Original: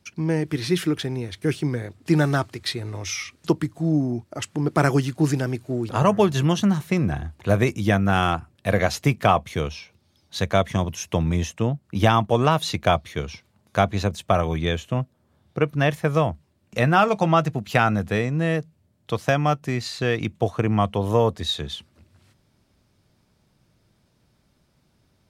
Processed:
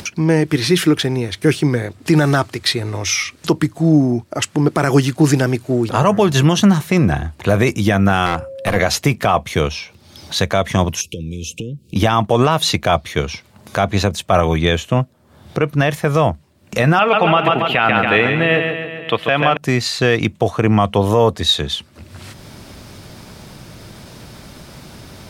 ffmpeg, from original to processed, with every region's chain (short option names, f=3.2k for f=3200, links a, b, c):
-filter_complex "[0:a]asettb=1/sr,asplit=3[a][b][c];[a]atrim=end=8.264[d];[b]atrim=start=8.26:end=8.76,asetpts=PTS-STARTPTS,afade=t=in:d=0.004:c=qsin,afade=t=out:st=0.496:d=0.004:c=qsin,aeval=exprs='val(0)+0.0112*sin(2*PI*540*n/s)':c=same,aeval=exprs='clip(val(0),-1,0.0708)':c=same[e];[c]atrim=start=8.756[f];[d][e]acrossfade=d=0.004:c1=hsin:c2=qsin[g];[g][f]acrossfade=d=0.004:c1=qsin:c2=hsin,asettb=1/sr,asplit=3[h][i][j];[h]atrim=end=11.014[k];[i]atrim=start=11.01:end=11.96,asetpts=PTS-STARTPTS,afade=t=in:d=0.004:c=qsin,afade=t=out:st=0.946:d=0.004:c=qsin,acompressor=threshold=-34dB:ratio=5:attack=3.2:release=140:knee=1:detection=peak,asuperstop=centerf=1100:order=20:qfactor=0.62,equalizer=f=2k:t=o:w=0.24:g=-14[l];[j]atrim=start=11.956[m];[k][l]acrossfade=d=0.004:c1=hsin:c2=qsin[n];[n][m]acrossfade=d=0.004:c1=qsin:c2=hsin,asettb=1/sr,asplit=3[o][p][q];[o]atrim=end=16.994[r];[p]atrim=start=16.99:end=19.57,asetpts=PTS-STARTPTS,afade=t=in:d=0.004:c=qsin,afade=t=out:st=2.576:d=0.004:c=qsin,highpass=f=250:p=1,highshelf=f=4.2k:t=q:w=3:g=-12.5,aecho=1:1:139|278|417|556|695|834:0.447|0.237|0.125|0.0665|0.0352|0.0187,atrim=end_sample=113778[s];[q]atrim=start=19.566[t];[r][s]acrossfade=d=0.004:c1=hsin:c2=qsin[u];[u][t]acrossfade=d=0.004:c1=qsin:c2=hsin,lowshelf=f=260:g=-4,acompressor=mode=upward:threshold=-32dB:ratio=2.5,alimiter=level_in=13dB:limit=-1dB:release=50:level=0:latency=1,volume=-2dB"